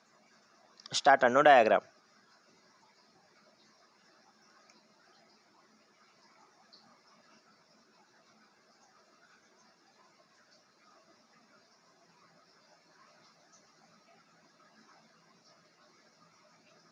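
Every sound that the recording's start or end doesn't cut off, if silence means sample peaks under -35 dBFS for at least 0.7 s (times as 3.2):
0.86–1.79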